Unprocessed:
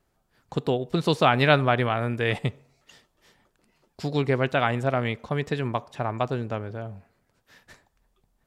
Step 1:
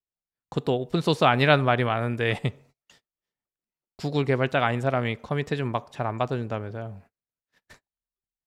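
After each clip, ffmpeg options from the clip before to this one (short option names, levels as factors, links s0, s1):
-af "agate=range=0.0251:threshold=0.00282:ratio=16:detection=peak"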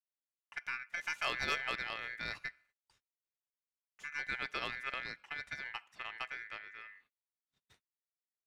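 -af "aeval=exprs='val(0)*sin(2*PI*1900*n/s)':c=same,aeval=exprs='0.562*(cos(1*acos(clip(val(0)/0.562,-1,1)))-cos(1*PI/2))+0.141*(cos(3*acos(clip(val(0)/0.562,-1,1)))-cos(3*PI/2))+0.0224*(cos(5*acos(clip(val(0)/0.562,-1,1)))-cos(5*PI/2))+0.00891*(cos(6*acos(clip(val(0)/0.562,-1,1)))-cos(6*PI/2))+0.00794*(cos(7*acos(clip(val(0)/0.562,-1,1)))-cos(7*PI/2))':c=same,asoftclip=type=tanh:threshold=0.106,volume=0.596"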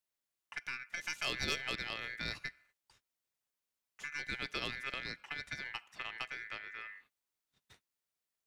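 -filter_complex "[0:a]acrossover=split=440|3000[s0][s1][s2];[s1]acompressor=threshold=0.00398:ratio=6[s3];[s0][s3][s2]amix=inputs=3:normalize=0,volume=1.88"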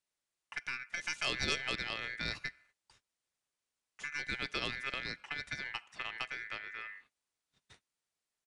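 -af "aresample=22050,aresample=44100,volume=1.26"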